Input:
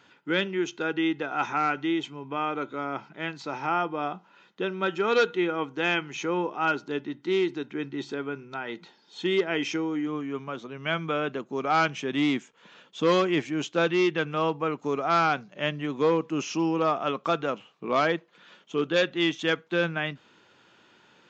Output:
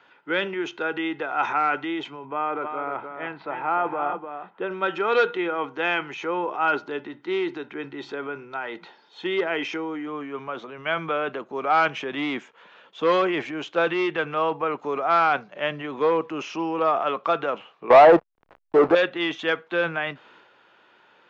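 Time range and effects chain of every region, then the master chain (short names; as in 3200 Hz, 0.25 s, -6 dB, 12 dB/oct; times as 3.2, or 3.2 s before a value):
2.25–4.71 Gaussian blur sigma 2.9 samples + echo 0.301 s -8 dB
17.9–18.95 synth low-pass 840 Hz, resonance Q 2.7 + sample leveller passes 3 + backlash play -48.5 dBFS
whole clip: three-band isolator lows -14 dB, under 430 Hz, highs -12 dB, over 4800 Hz; transient shaper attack +1 dB, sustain +6 dB; high shelf 3000 Hz -10.5 dB; gain +5 dB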